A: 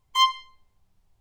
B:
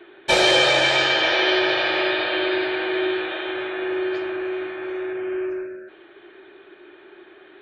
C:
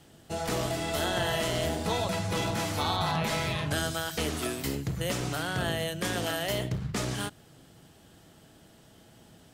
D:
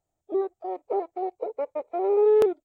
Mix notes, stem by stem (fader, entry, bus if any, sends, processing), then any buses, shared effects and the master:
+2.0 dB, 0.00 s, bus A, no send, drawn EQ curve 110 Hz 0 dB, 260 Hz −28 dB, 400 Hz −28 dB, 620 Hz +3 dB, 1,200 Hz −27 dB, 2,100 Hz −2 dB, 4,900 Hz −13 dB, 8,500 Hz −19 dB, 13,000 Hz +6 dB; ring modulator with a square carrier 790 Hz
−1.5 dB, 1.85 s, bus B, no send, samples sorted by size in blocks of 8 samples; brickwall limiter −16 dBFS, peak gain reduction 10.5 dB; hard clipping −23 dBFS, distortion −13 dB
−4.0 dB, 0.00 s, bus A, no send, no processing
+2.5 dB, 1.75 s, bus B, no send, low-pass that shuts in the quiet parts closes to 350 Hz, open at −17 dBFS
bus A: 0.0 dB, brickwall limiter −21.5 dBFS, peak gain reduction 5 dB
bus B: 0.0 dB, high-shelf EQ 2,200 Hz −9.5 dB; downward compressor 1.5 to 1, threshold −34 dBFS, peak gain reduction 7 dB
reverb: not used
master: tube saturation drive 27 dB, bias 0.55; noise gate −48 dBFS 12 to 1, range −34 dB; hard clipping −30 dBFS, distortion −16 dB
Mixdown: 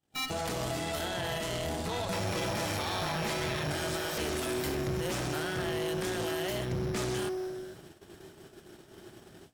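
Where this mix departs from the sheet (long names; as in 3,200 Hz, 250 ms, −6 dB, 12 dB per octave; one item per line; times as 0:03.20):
stem C −4.0 dB → +5.5 dB
stem D: muted
master: missing hard clipping −30 dBFS, distortion −16 dB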